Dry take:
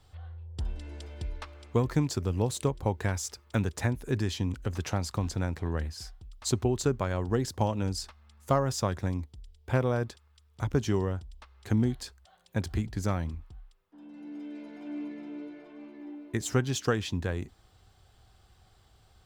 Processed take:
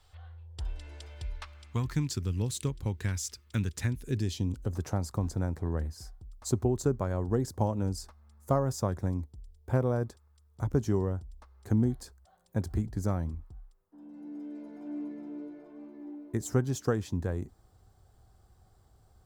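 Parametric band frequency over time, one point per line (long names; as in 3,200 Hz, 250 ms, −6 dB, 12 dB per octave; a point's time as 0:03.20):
parametric band −15 dB 1.7 octaves
0:01.00 200 Hz
0:02.15 710 Hz
0:03.93 710 Hz
0:04.83 2,900 Hz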